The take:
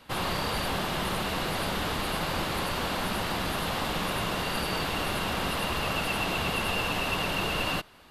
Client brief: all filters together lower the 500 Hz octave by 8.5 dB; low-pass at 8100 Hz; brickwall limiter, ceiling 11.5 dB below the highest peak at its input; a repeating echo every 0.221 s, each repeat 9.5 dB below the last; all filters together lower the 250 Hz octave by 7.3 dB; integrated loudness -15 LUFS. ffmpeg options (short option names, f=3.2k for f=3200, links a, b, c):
-af "lowpass=8.1k,equalizer=f=250:t=o:g=-8.5,equalizer=f=500:t=o:g=-9,alimiter=level_in=4dB:limit=-24dB:level=0:latency=1,volume=-4dB,aecho=1:1:221|442|663|884:0.335|0.111|0.0365|0.012,volume=20.5dB"